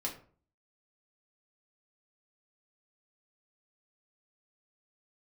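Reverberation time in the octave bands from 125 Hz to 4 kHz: 0.55, 0.50, 0.50, 0.45, 0.35, 0.25 s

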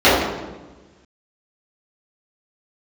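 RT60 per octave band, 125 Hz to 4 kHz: 1.7, 1.5, 1.3, 1.1, 0.95, 0.90 s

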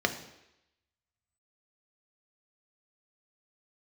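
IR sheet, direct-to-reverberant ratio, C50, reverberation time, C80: 5.5 dB, 11.0 dB, 0.85 s, 13.5 dB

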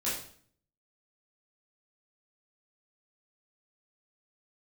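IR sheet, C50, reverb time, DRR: 3.0 dB, 0.55 s, -9.5 dB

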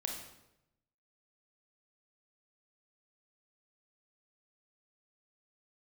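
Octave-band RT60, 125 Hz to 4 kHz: 1.2, 0.95, 0.90, 0.80, 0.75, 0.70 s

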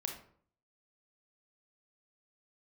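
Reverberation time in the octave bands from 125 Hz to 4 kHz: 0.70, 0.65, 0.60, 0.55, 0.45, 0.35 s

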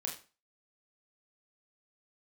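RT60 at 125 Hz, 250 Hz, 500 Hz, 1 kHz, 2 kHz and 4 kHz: 0.35, 0.35, 0.35, 0.35, 0.35, 0.30 s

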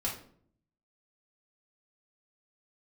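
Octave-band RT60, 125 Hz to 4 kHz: 0.95, 0.85, 0.65, 0.50, 0.40, 0.35 s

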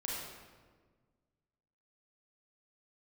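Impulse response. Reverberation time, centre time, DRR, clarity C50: 1.5 s, 93 ms, -5.0 dB, -2.0 dB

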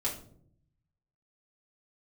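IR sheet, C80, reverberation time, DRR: 13.0 dB, not exponential, -5.5 dB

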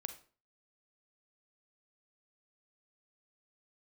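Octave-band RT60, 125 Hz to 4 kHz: 0.45, 0.45, 0.40, 0.40, 0.35, 0.35 s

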